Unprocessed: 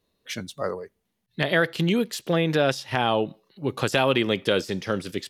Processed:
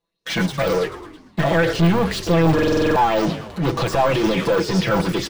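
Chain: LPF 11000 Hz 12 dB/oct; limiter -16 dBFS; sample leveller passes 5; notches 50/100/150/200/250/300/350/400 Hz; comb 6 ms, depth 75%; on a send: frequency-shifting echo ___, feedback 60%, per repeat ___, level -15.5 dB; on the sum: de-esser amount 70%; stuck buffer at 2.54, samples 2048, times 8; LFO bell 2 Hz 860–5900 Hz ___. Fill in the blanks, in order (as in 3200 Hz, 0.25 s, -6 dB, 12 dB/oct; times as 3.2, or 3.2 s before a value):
0.108 s, -49 Hz, +9 dB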